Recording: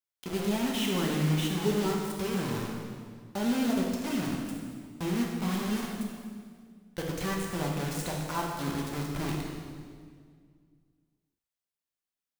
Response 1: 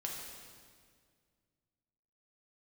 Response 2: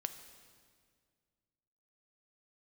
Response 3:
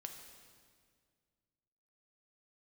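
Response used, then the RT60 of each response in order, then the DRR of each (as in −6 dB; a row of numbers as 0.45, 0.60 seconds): 1; 2.0, 2.0, 2.0 seconds; −2.0, 8.5, 3.5 decibels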